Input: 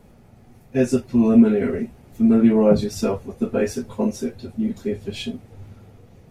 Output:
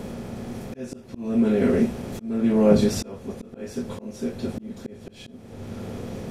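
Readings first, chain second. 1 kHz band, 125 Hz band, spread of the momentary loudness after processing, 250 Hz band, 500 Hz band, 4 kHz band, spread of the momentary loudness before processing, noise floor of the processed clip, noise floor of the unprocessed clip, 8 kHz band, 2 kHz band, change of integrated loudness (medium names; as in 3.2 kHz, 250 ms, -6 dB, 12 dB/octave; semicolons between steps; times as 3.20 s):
-3.5 dB, -2.0 dB, 19 LU, -5.5 dB, -3.5 dB, -2.5 dB, 15 LU, -45 dBFS, -50 dBFS, -1.5 dB, -3.5 dB, -4.5 dB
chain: spectral levelling over time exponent 0.6; slow attack 705 ms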